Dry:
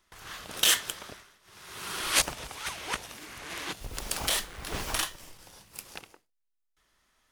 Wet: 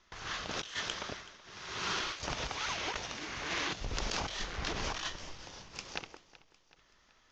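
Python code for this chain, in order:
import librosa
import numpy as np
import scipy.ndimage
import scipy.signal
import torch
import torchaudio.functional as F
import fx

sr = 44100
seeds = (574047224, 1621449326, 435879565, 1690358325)

p1 = scipy.signal.sosfilt(scipy.signal.butter(12, 6700.0, 'lowpass', fs=sr, output='sos'), x)
p2 = fx.over_compress(p1, sr, threshold_db=-37.0, ratio=-1.0)
y = p2 + fx.echo_feedback(p2, sr, ms=378, feedback_pct=53, wet_db=-19.0, dry=0)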